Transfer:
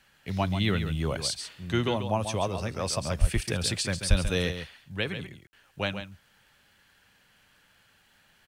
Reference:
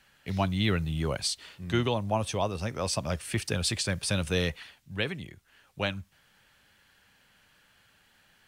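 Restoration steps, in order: de-click; de-plosive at 3.2/4.09; room tone fill 5.47–5.53; inverse comb 0.138 s -9 dB

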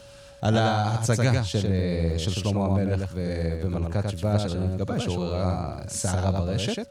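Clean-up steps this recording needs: de-click; notch 560 Hz, Q 30; inverse comb 96 ms -3.5 dB

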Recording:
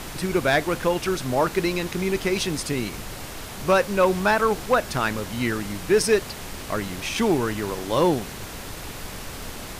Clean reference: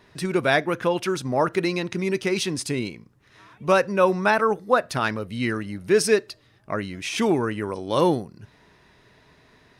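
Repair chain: clip repair -11 dBFS; noise print and reduce 21 dB

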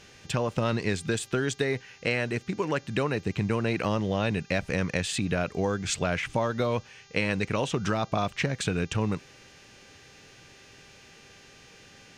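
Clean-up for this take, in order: de-hum 396.7 Hz, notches 17

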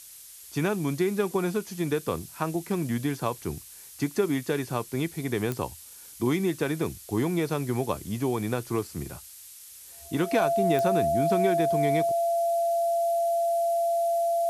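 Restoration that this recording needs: de-click; notch 680 Hz, Q 30; noise print and reduce 26 dB

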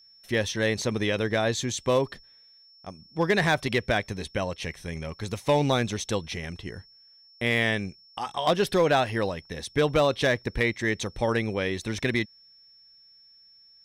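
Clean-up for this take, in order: clip repair -14.5 dBFS; notch 5400 Hz, Q 30

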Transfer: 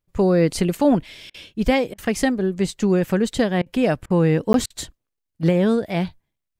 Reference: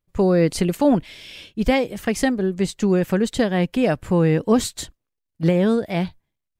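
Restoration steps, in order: interpolate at 4.53, 12 ms; interpolate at 1.3/1.94/3.62/4.06/4.66, 41 ms

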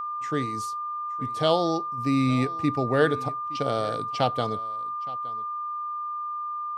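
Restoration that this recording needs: notch 1200 Hz, Q 30; inverse comb 0.868 s -20 dB

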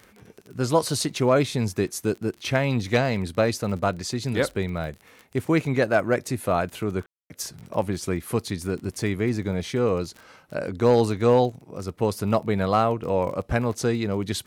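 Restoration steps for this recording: clip repair -9.5 dBFS; de-click; room tone fill 7.06–7.3

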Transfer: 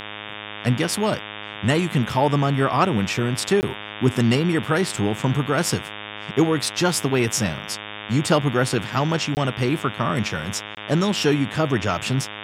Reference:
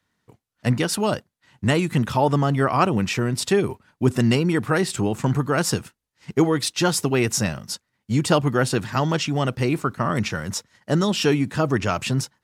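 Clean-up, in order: de-hum 104.6 Hz, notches 35; interpolate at 3.61/9.35/10.75, 19 ms

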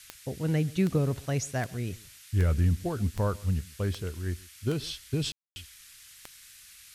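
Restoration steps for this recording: de-click; room tone fill 5.32–5.56; noise print and reduce 21 dB; inverse comb 0.134 s -23 dB

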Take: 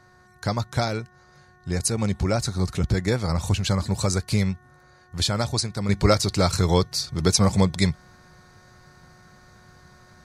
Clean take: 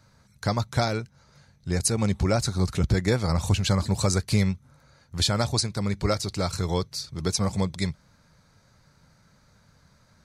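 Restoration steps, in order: de-hum 364.2 Hz, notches 5; gain correction -6.5 dB, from 5.89

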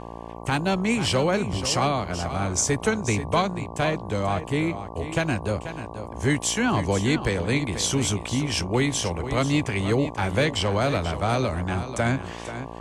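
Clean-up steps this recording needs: de-hum 57.5 Hz, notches 20; inverse comb 0.486 s -11 dB

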